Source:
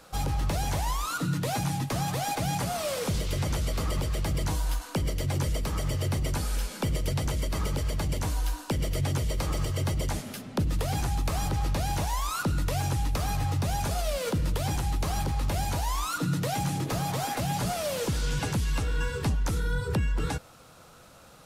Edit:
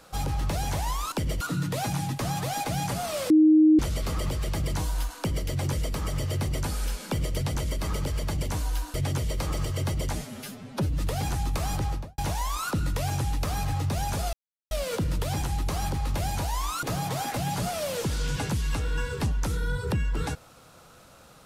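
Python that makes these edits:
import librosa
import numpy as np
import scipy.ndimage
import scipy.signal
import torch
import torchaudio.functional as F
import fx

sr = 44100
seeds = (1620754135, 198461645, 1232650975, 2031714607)

y = fx.studio_fade_out(x, sr, start_s=11.55, length_s=0.35)
y = fx.edit(y, sr, fx.bleep(start_s=3.01, length_s=0.49, hz=311.0, db=-13.5),
    fx.move(start_s=8.65, length_s=0.29, to_s=1.12),
    fx.stretch_span(start_s=10.15, length_s=0.56, factor=1.5),
    fx.insert_silence(at_s=14.05, length_s=0.38),
    fx.cut(start_s=16.17, length_s=0.69), tone=tone)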